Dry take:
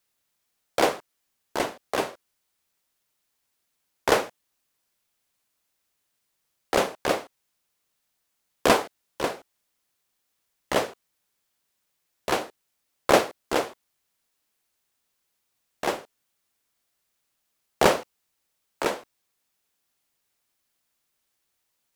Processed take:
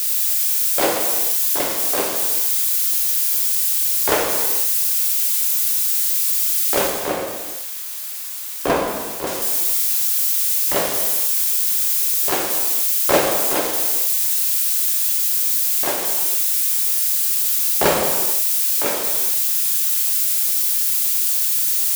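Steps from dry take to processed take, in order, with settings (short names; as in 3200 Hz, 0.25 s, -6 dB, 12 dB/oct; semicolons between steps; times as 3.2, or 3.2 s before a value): switching spikes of -18.5 dBFS; 6.9–9.27 high shelf 2500 Hz -11 dB; non-linear reverb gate 0.49 s falling, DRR -0.5 dB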